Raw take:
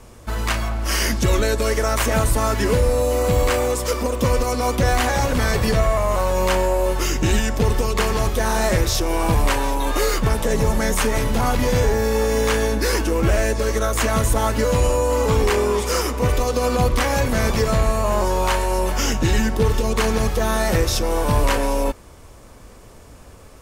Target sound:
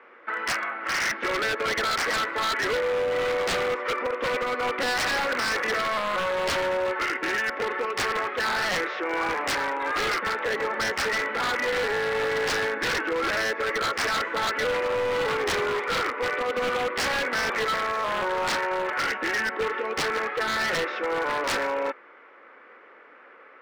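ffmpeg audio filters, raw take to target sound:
ffmpeg -i in.wav -af "highpass=frequency=390:width=0.5412,highpass=frequency=390:width=1.3066,equalizer=frequency=410:width_type=q:width=4:gain=-4,equalizer=frequency=660:width_type=q:width=4:gain=-9,equalizer=frequency=970:width_type=q:width=4:gain=-4,equalizer=frequency=1400:width_type=q:width=4:gain=8,equalizer=frequency=2000:width_type=q:width=4:gain=8,lowpass=frequency=2400:width=0.5412,lowpass=frequency=2400:width=1.3066,aeval=exprs='0.0944*(abs(mod(val(0)/0.0944+3,4)-2)-1)':channel_layout=same" out.wav

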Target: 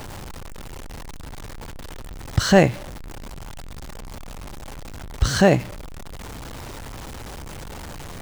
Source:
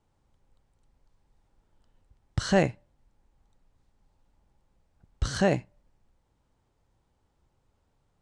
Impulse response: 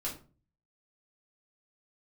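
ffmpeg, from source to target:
-af "aeval=exprs='val(0)+0.5*0.0133*sgn(val(0))':channel_layout=same,volume=8dB"

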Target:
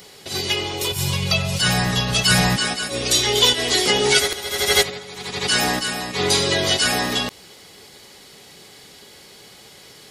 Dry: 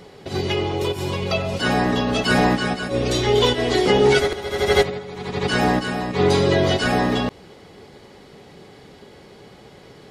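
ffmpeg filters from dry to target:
ffmpeg -i in.wav -filter_complex "[0:a]crystalizer=i=10:c=0,asettb=1/sr,asplit=3[link_01][link_02][link_03];[link_01]atrim=end=0.914[link_04];[link_02]atrim=start=0.91:end=2.56,asetpts=PTS-STARTPTS,afade=type=in:duration=0.004:curve=qsin,afade=type=out:start_time=1.646:duration=0.004:curve=qsin,lowshelf=frequency=200:width_type=q:width=3:gain=8[link_05];[link_03]atrim=start=2.556[link_06];[link_04][link_05]acrossfade=duration=0.004:curve1=hsin:curve2=qsin[link_07];[link_07][link_06]acrossfade=duration=0.004:curve1=qsin:curve2=hsin,volume=-7dB" out.wav

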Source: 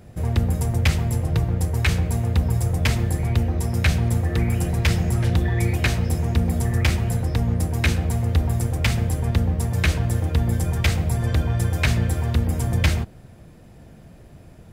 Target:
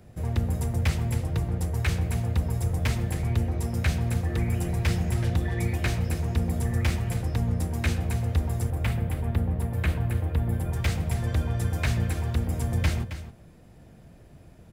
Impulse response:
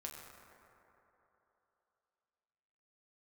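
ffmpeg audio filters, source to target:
-filter_complex "[0:a]asettb=1/sr,asplit=3[link_01][link_02][link_03];[link_01]atrim=end=8.704[link_04];[link_02]atrim=start=8.7:end=10.73,asetpts=PTS-STARTPTS,afade=type=in:duration=0.004:curve=qsin,afade=type=out:start_time=2.026:duration=0.004:curve=qsin,equalizer=frequency=6000:width=0.97:gain=-14[link_05];[link_03]atrim=start=10.726[link_06];[link_04][link_05]acrossfade=duration=0.004:curve1=hsin:curve2=qsin[link_07];[link_07][link_06]acrossfade=duration=0.004:curve1=qsin:curve2=hsin,acrossover=split=300|1900[link_08][link_09][link_10];[link_10]asoftclip=type=tanh:threshold=-24dB[link_11];[link_08][link_09][link_11]amix=inputs=3:normalize=0,aecho=1:1:269:0.266,volume=-5.5dB"

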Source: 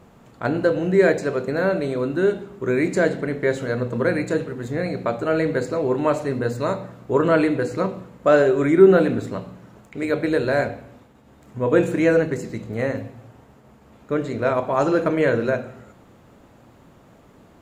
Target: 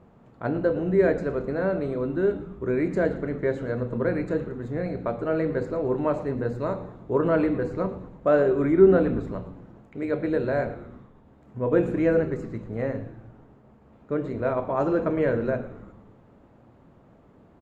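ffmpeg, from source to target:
ffmpeg -i in.wav -filter_complex "[0:a]lowpass=frequency=1100:poles=1,asplit=2[link_01][link_02];[link_02]asplit=6[link_03][link_04][link_05][link_06][link_07][link_08];[link_03]adelay=113,afreqshift=-110,volume=-17dB[link_09];[link_04]adelay=226,afreqshift=-220,volume=-21dB[link_10];[link_05]adelay=339,afreqshift=-330,volume=-25dB[link_11];[link_06]adelay=452,afreqshift=-440,volume=-29dB[link_12];[link_07]adelay=565,afreqshift=-550,volume=-33.1dB[link_13];[link_08]adelay=678,afreqshift=-660,volume=-37.1dB[link_14];[link_09][link_10][link_11][link_12][link_13][link_14]amix=inputs=6:normalize=0[link_15];[link_01][link_15]amix=inputs=2:normalize=0,volume=-3.5dB" out.wav

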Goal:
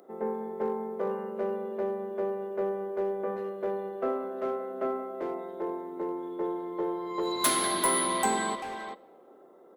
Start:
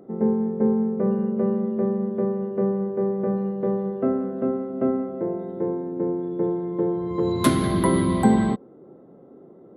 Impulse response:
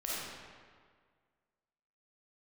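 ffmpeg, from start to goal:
-filter_complex "[0:a]highpass=610,highshelf=frequency=4200:gain=11.5,asoftclip=type=tanh:threshold=-19dB,asplit=2[link_01][link_02];[link_02]adelay=390,highpass=300,lowpass=3400,asoftclip=type=hard:threshold=-28dB,volume=-6dB[link_03];[link_01][link_03]amix=inputs=2:normalize=0,asplit=2[link_04][link_05];[1:a]atrim=start_sample=2205[link_06];[link_05][link_06]afir=irnorm=-1:irlink=0,volume=-25.5dB[link_07];[link_04][link_07]amix=inputs=2:normalize=0"

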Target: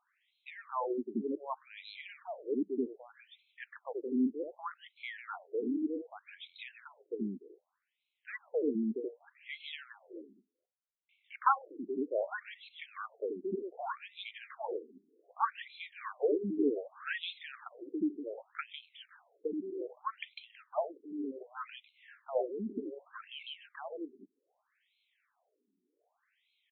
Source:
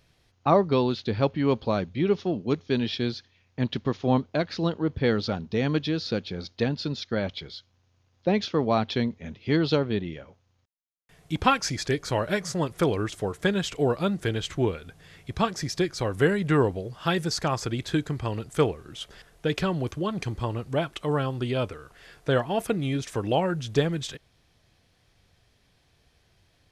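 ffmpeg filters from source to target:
ffmpeg -i in.wav -filter_complex "[0:a]acrossover=split=380|2900[link_01][link_02][link_03];[link_01]adelay=80[link_04];[link_03]adelay=150[link_05];[link_04][link_02][link_05]amix=inputs=3:normalize=0,afftfilt=real='re*between(b*sr/1024,280*pow(3000/280,0.5+0.5*sin(2*PI*0.65*pts/sr))/1.41,280*pow(3000/280,0.5+0.5*sin(2*PI*0.65*pts/sr))*1.41)':imag='im*between(b*sr/1024,280*pow(3000/280,0.5+0.5*sin(2*PI*0.65*pts/sr))/1.41,280*pow(3000/280,0.5+0.5*sin(2*PI*0.65*pts/sr))*1.41)':win_size=1024:overlap=0.75,volume=-2dB" out.wav

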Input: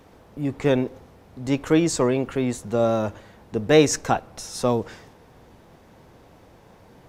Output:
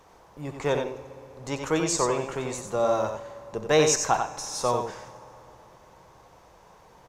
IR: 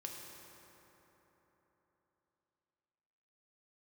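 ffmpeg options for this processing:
-filter_complex "[0:a]equalizer=frequency=100:width_type=o:width=0.67:gain=-7,equalizer=frequency=250:width_type=o:width=0.67:gain=-10,equalizer=frequency=1000:width_type=o:width=0.67:gain=8,equalizer=frequency=6300:width_type=o:width=0.67:gain=7,aecho=1:1:91:0.501,asplit=2[link_01][link_02];[1:a]atrim=start_sample=2205,adelay=65[link_03];[link_02][link_03]afir=irnorm=-1:irlink=0,volume=-11dB[link_04];[link_01][link_04]amix=inputs=2:normalize=0,volume=-4.5dB"

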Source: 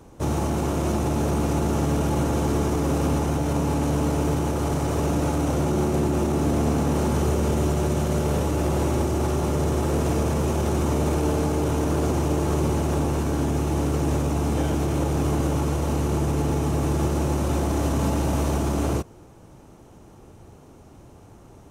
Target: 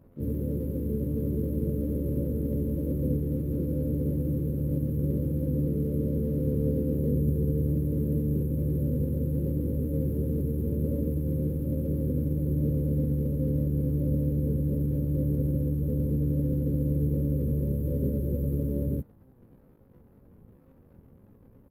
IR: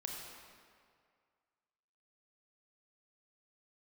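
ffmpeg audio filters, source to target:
-filter_complex "[0:a]afftfilt=real='re*(1-between(b*sr/4096,290,11000))':imag='im*(1-between(b*sr/4096,290,11000))':win_size=4096:overlap=0.75,aeval=exprs='sgn(val(0))*max(abs(val(0))-0.00158,0)':channel_layout=same,asplit=4[link_01][link_02][link_03][link_04];[link_02]asetrate=33038,aresample=44100,atempo=1.33484,volume=-16dB[link_05];[link_03]asetrate=55563,aresample=44100,atempo=0.793701,volume=-18dB[link_06];[link_04]asetrate=88200,aresample=44100,atempo=0.5,volume=-1dB[link_07];[link_01][link_05][link_06][link_07]amix=inputs=4:normalize=0,volume=-5dB"

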